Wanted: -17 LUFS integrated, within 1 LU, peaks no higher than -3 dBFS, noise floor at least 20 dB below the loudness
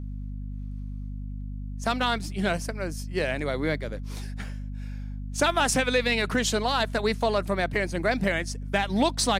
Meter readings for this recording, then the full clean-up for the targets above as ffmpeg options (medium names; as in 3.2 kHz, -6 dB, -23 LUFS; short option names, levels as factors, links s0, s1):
hum 50 Hz; highest harmonic 250 Hz; hum level -32 dBFS; loudness -26.5 LUFS; peak level -10.5 dBFS; loudness target -17.0 LUFS
-> -af "bandreject=f=50:t=h:w=6,bandreject=f=100:t=h:w=6,bandreject=f=150:t=h:w=6,bandreject=f=200:t=h:w=6,bandreject=f=250:t=h:w=6"
-af "volume=2.99,alimiter=limit=0.708:level=0:latency=1"